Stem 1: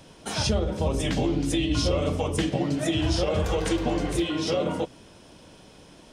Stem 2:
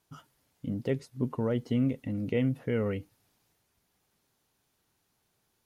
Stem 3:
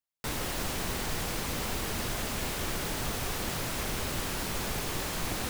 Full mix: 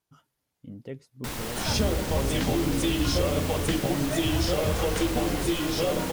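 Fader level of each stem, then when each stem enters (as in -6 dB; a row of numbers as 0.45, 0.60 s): -1.0, -8.5, -1.0 dB; 1.30, 0.00, 1.00 s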